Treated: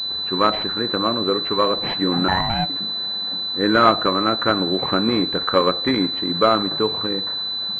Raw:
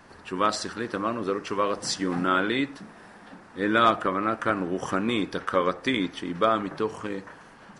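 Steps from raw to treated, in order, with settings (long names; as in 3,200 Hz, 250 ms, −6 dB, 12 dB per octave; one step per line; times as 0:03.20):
0:02.28–0:02.70: ring modulation 450 Hz
switching amplifier with a slow clock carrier 4,000 Hz
level +6.5 dB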